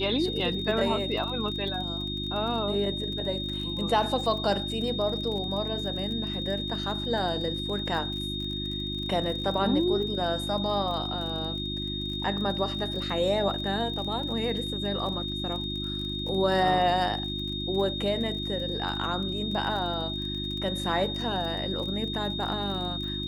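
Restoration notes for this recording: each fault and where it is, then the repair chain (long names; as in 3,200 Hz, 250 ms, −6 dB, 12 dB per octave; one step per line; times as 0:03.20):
surface crackle 34 per second −35 dBFS
mains hum 50 Hz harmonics 7 −35 dBFS
whistle 3,700 Hz −33 dBFS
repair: click removal
hum removal 50 Hz, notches 7
notch filter 3,700 Hz, Q 30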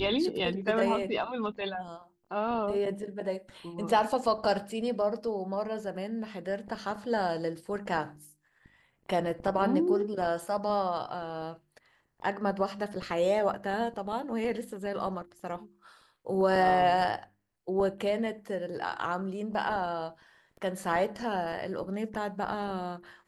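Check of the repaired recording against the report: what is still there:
none of them is left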